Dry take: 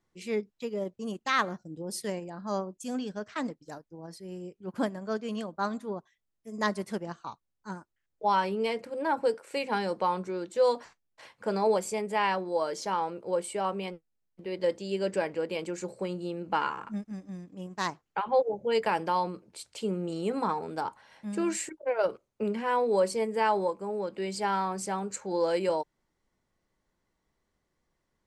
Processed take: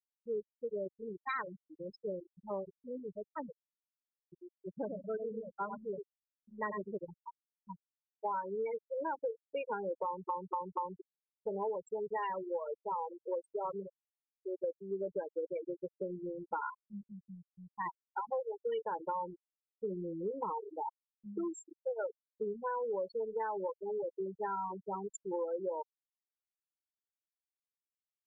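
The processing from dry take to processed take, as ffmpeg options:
-filter_complex "[0:a]asettb=1/sr,asplit=3[a][b][c];[a]atrim=end=4.434[d];[b]atrim=start=4.43:end=6.92,asetpts=PTS-STARTPTS,afade=t=in:d=0.004:c=qsin,afade=t=out:st=2.486:d=0.004:c=qsin,asplit=2[e][f];[f]adelay=94,lowpass=f=4.1k:p=1,volume=-5.5dB,asplit=2[g][h];[h]adelay=94,lowpass=f=4.1k:p=1,volume=0.36,asplit=2[i][j];[j]adelay=94,lowpass=f=4.1k:p=1,volume=0.36,asplit=2[k][l];[l]adelay=94,lowpass=f=4.1k:p=1,volume=0.36[m];[e][g][i][k][m]amix=inputs=5:normalize=0,atrim=end_sample=109809[n];[c]atrim=start=6.916[o];[d][n]acrossfade=d=0.004:c1=hsin:c2=qsin[p];[p][o]acrossfade=d=0.004:c1=qsin:c2=hsin,asplit=5[q][r][s][t][u];[q]atrim=end=10.292[v];[r]atrim=start=10.048:end=10.292[w];[s]atrim=start=10.048:end=10.292[x];[t]atrim=start=10.048:end=10.292[y];[u]atrim=start=11.008[z];[v][w]acrossfade=d=0.004:c1=hsin:c2=hsin[aa];[aa][x]acrossfade=d=0.004:c1=hsin:c2=hsin[ab];[ab][y]acrossfade=d=0.004:c1=hsin:c2=hsin[ac];[ac][z]acrossfade=d=0.004:c1=hsin:c2=hsin,afftfilt=real='re*gte(hypot(re,im),0.1)':imag='im*gte(hypot(re,im),0.1)':win_size=1024:overlap=0.75,aecho=1:1:2.1:0.62,acompressor=threshold=-28dB:ratio=10,volume=-5dB"

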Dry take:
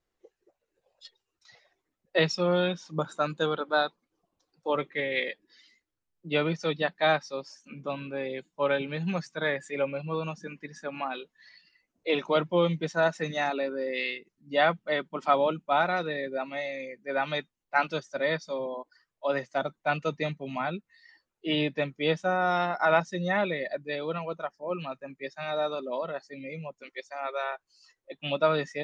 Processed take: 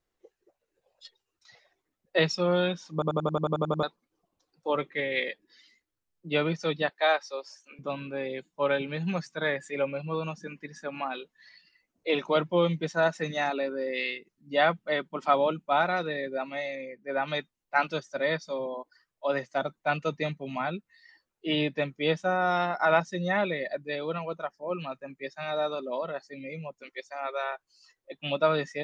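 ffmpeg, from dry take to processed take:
-filter_complex "[0:a]asettb=1/sr,asplit=3[a][b][c];[a]atrim=end=6.894[d];[b]atrim=start=6.89:end=7.79,asetpts=PTS-STARTPTS,afade=t=in:d=0.004:c=qsin,afade=t=out:st=0.896:d=0.004:c=qsin,highpass=f=390:w=0.5412,highpass=f=390:w=1.3066[e];[c]atrim=start=7.786[f];[d][e]acrossfade=d=0.004:c1=hsin:c2=qsin[g];[g][f]acrossfade=d=0.004:c1=qsin:c2=hsin,asettb=1/sr,asplit=3[h][i][j];[h]atrim=end=16.754[k];[i]atrim=start=16.75:end=17.28,asetpts=PTS-STARTPTS,afade=t=in:d=0.004:c=qsin,afade=t=out:st=0.526:d=0.004:c=qsin,aemphasis=mode=reproduction:type=75kf[l];[j]atrim=start=17.276[m];[k][l]acrossfade=d=0.004:c1=hsin:c2=qsin[n];[n][m]acrossfade=d=0.004:c1=qsin:c2=hsin,asplit=11[o][p][q][r][s][t][u][v][w][x][y];[o]atrim=end=3.022[z];[p]atrim=start=2.928:end=3.022[aa];[q]atrim=start=2.928:end=3.022[ab];[r]atrim=start=2.928:end=3.022[ac];[s]atrim=start=2.928:end=3.022[ad];[t]atrim=start=2.928:end=3.022[ae];[u]atrim=start=2.928:end=3.022[af];[v]atrim=start=2.928:end=3.022[ag];[w]atrim=start=2.928:end=3.022[ah];[x]atrim=start=2.928:end=3.022[ai];[y]atrim=start=3.828[aj];[z][aa]acrossfade=d=0.004:c1=hsin:c2=hsin[ak];[ak][ab]acrossfade=d=0.004:c1=hsin:c2=hsin[al];[al][ac]acrossfade=d=0.004:c1=hsin:c2=hsin[am];[am][ad]acrossfade=d=0.004:c1=hsin:c2=hsin[an];[an][ae]acrossfade=d=0.004:c1=hsin:c2=hsin[ao];[ao][af]acrossfade=d=0.004:c1=hsin:c2=hsin[ap];[ap][ag]acrossfade=d=0.004:c1=hsin:c2=hsin[aq];[aq][ah]acrossfade=d=0.004:c1=hsin:c2=hsin[ar];[ar][ai]acrossfade=d=0.004:c1=hsin:c2=hsin[as];[as][aj]acrossfade=d=0.004:c1=hsin:c2=hsin"

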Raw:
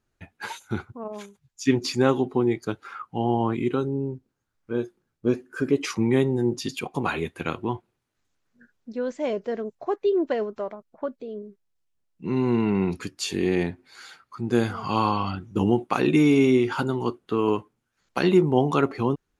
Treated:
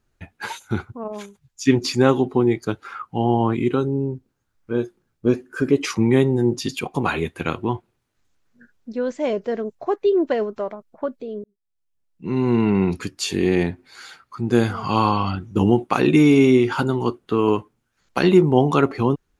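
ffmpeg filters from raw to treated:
-filter_complex "[0:a]asplit=2[a][b];[a]atrim=end=11.44,asetpts=PTS-STARTPTS,afade=t=out:st=11.436:d=0.004:c=hsin[c];[b]atrim=start=11.44,asetpts=PTS-STARTPTS,afade=t=in:d=1.18[d];[c][d]concat=n=2:v=0:a=1,lowshelf=f=75:g=6,volume=4dB"

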